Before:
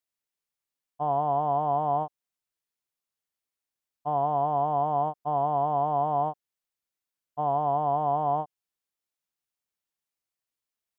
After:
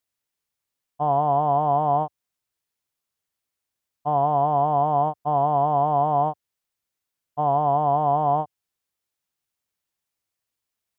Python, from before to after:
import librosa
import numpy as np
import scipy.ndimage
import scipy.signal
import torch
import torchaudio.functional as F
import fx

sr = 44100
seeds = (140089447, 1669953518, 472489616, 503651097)

y = fx.peak_eq(x, sr, hz=91.0, db=6.0, octaves=0.97)
y = y * librosa.db_to_amplitude(5.0)